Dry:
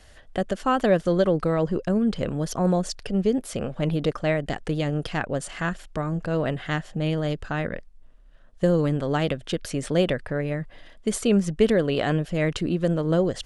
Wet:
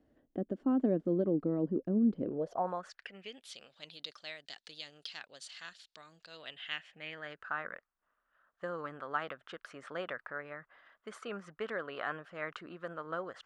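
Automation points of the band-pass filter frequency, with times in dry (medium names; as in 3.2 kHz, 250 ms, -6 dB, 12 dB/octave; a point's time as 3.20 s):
band-pass filter, Q 3.5
2.20 s 280 Hz
2.77 s 1.2 kHz
3.58 s 4.2 kHz
6.29 s 4.2 kHz
7.53 s 1.3 kHz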